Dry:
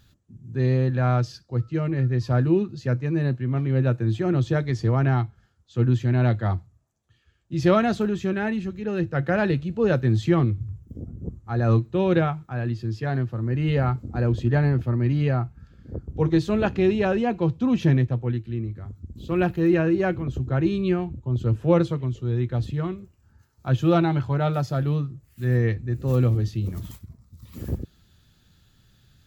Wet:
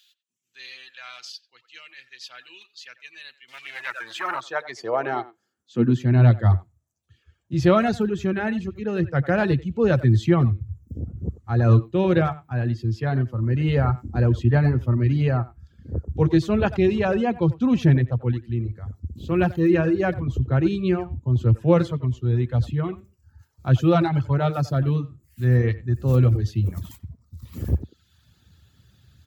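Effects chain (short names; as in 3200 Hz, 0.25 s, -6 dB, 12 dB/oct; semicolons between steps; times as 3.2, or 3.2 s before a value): speakerphone echo 90 ms, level -8 dB; 3.48–4.41 sample leveller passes 2; reverb removal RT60 0.7 s; high-pass sweep 3000 Hz -> 74 Hz, 3.49–6.73; gain +1.5 dB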